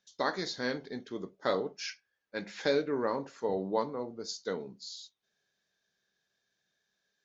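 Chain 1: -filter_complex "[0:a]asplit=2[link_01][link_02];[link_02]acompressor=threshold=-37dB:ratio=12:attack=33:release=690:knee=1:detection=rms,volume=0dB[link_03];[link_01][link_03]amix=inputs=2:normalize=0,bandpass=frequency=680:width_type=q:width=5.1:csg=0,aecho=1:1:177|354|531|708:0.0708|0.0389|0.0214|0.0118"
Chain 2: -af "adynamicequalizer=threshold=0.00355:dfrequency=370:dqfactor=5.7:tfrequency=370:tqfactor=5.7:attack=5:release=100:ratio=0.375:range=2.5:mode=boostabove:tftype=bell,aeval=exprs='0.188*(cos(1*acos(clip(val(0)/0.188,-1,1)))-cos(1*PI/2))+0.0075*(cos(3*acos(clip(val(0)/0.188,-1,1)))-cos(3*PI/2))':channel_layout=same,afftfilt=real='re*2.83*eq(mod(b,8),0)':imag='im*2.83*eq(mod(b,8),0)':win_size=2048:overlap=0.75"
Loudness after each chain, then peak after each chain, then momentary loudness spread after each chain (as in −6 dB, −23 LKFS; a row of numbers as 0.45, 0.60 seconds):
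−42.5, −40.0 LKFS; −23.0, −22.0 dBFS; 14, 11 LU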